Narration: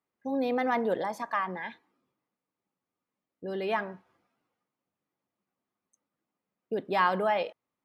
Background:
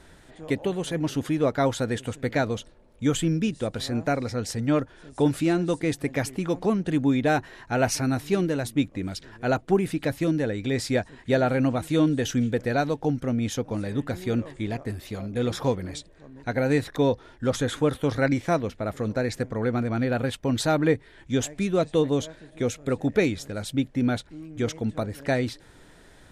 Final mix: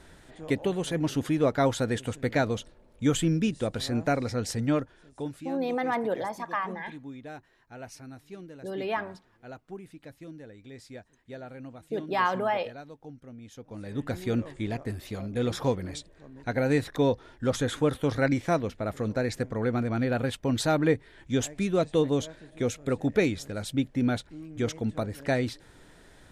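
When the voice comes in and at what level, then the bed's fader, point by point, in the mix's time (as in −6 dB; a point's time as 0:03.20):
5.20 s, −0.5 dB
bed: 0:04.63 −1 dB
0:05.59 −20 dB
0:13.49 −20 dB
0:14.08 −2 dB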